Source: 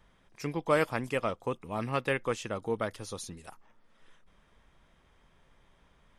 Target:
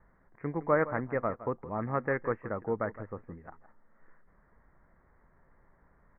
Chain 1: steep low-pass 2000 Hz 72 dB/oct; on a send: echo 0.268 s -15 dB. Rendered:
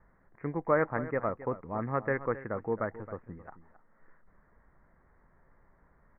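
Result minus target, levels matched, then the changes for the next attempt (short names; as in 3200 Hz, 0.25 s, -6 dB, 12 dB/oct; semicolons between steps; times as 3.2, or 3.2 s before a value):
echo 0.104 s late
change: echo 0.164 s -15 dB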